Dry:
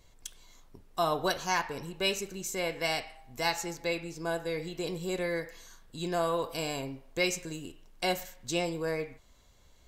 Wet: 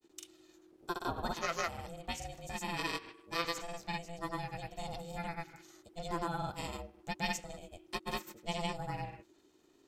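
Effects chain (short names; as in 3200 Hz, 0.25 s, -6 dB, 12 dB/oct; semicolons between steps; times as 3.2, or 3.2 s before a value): grains, spray 0.1 s, pitch spread up and down by 0 st; ring modulator 340 Hz; gain -2.5 dB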